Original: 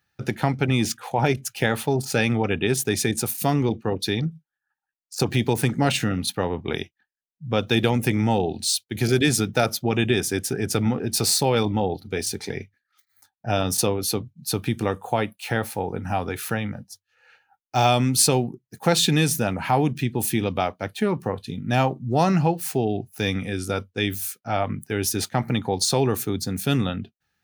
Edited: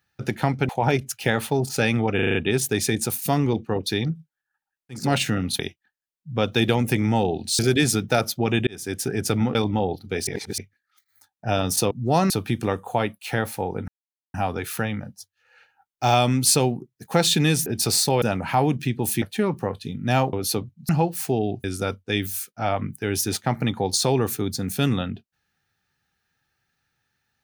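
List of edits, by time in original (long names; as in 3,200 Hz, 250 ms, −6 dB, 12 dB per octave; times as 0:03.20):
0:00.69–0:01.05: remove
0:02.51: stutter 0.04 s, 6 plays
0:05.17–0:05.75: remove, crossfade 0.24 s
0:06.33–0:06.74: remove
0:08.74–0:09.04: remove
0:10.12–0:10.49: fade in
0:11.00–0:11.56: move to 0:19.38
0:12.28–0:12.59: reverse
0:13.92–0:14.48: swap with 0:21.96–0:22.35
0:16.06: splice in silence 0.46 s
0:20.38–0:20.85: remove
0:23.10–0:23.52: remove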